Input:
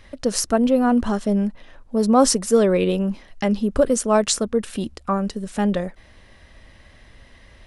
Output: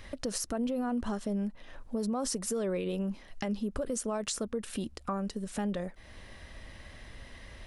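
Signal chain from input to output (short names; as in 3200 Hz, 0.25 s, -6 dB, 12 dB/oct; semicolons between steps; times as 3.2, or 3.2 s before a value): high shelf 10000 Hz +5 dB; limiter -14 dBFS, peak gain reduction 11 dB; compressor 2:1, threshold -39 dBFS, peak gain reduction 12 dB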